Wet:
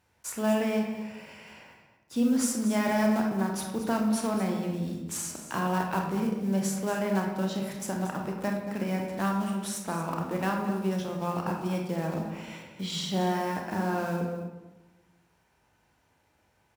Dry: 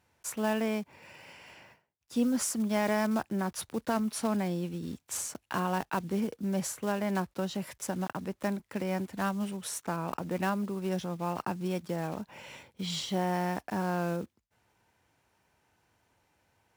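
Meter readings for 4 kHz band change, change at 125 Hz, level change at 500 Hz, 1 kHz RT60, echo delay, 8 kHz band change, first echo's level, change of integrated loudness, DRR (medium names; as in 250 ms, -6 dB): +2.0 dB, +3.5 dB, +2.5 dB, 1.0 s, 231 ms, +1.5 dB, -12.0 dB, +3.0 dB, 1.0 dB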